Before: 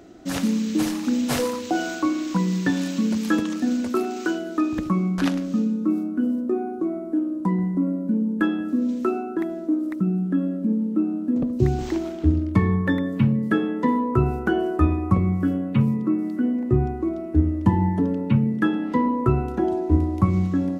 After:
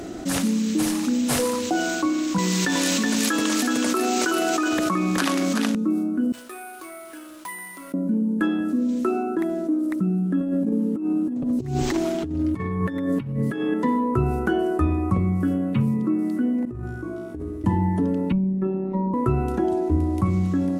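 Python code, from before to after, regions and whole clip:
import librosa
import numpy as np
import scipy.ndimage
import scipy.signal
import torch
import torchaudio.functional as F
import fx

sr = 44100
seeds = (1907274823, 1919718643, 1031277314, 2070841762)

y = fx.chain(x, sr, fx.highpass(hz=730.0, slope=6),
    fx.echo_single(ms=372, db=-4.5),
    fx.env_flatten(amount_pct=100), at=(2.38, 5.75))
y = fx.chain(y, sr, fx.cheby1_highpass(hz=2500.0, order=2),
    fx.resample_bad(factor=4, down='none', up='hold'), at=(6.32, 7.94))
y = fx.chain(y, sr, fx.comb(ms=7.2, depth=0.55),
    fx.over_compress(threshold_db=-25.0, ratio=-0.5), at=(10.4, 13.74))
y = fx.chain(y, sr, fx.comb_fb(f0_hz=59.0, decay_s=0.86, harmonics='all', damping=0.0, mix_pct=100),
    fx.over_compress(threshold_db=-40.0, ratio=-1.0), at=(16.65, 17.64))
y = fx.chain(y, sr, fx.moving_average(points=28),
    fx.robotise(hz=190.0), at=(18.32, 19.14))
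y = fx.peak_eq(y, sr, hz=9700.0, db=8.5, octaves=0.81)
y = fx.env_flatten(y, sr, amount_pct=50)
y = y * librosa.db_to_amplitude(-4.5)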